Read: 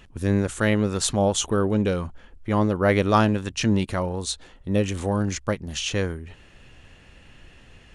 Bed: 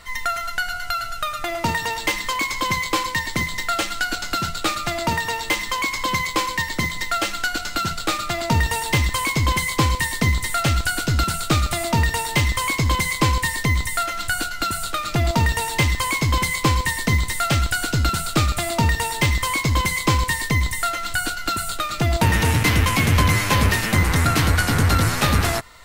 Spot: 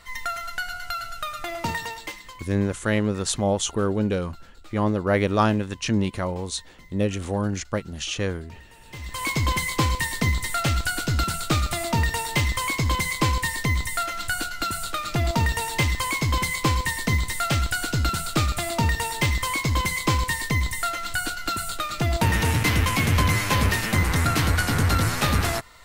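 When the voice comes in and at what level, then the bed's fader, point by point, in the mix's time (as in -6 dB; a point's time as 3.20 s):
2.25 s, -1.5 dB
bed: 1.78 s -5.5 dB
2.73 s -29 dB
8.80 s -29 dB
9.27 s -3.5 dB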